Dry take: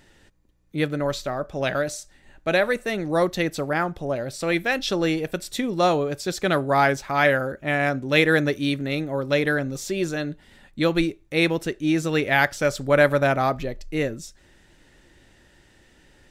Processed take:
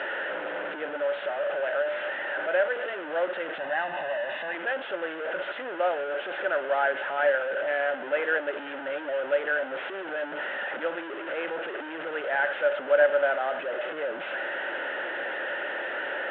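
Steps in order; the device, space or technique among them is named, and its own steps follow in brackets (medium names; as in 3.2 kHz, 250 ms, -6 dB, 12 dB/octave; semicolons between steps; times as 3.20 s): digital answering machine (band-pass 390–3100 Hz; one-bit delta coder 16 kbps, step -19 dBFS; cabinet simulation 500–3300 Hz, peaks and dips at 570 Hz +8 dB, 1.1 kHz -9 dB, 1.5 kHz +8 dB, 2.3 kHz -9 dB); 3.58–4.55 s: comb 1.1 ms, depth 71%; trim -6.5 dB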